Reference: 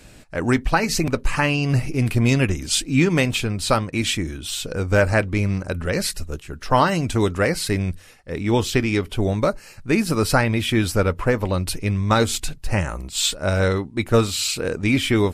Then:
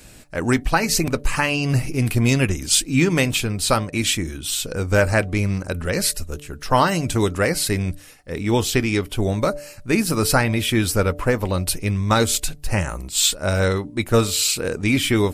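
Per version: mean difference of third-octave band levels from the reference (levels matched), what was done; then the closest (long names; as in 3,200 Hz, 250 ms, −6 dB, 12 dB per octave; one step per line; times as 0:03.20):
2.0 dB: high-shelf EQ 7,200 Hz +9.5 dB
hum removal 146.4 Hz, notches 5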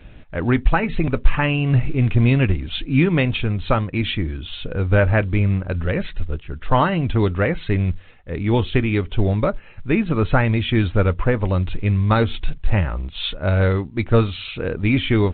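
7.0 dB: low-shelf EQ 110 Hz +10 dB
level −1 dB
mu-law 64 kbit/s 8,000 Hz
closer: first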